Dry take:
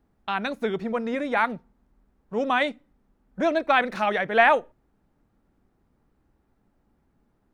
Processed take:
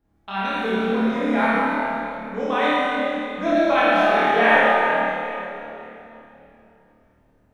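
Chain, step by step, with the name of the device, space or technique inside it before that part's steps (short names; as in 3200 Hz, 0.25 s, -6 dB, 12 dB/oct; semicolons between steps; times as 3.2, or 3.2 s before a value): tunnel (flutter echo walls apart 4.6 m, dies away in 0.59 s; reverb RT60 3.2 s, pre-delay 14 ms, DRR -7 dB); gain -6 dB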